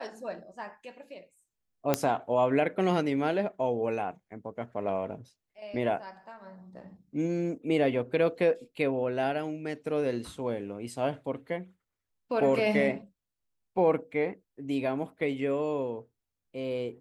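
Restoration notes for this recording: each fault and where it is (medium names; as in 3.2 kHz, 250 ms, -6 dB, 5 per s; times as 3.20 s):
1.94 s: pop -9 dBFS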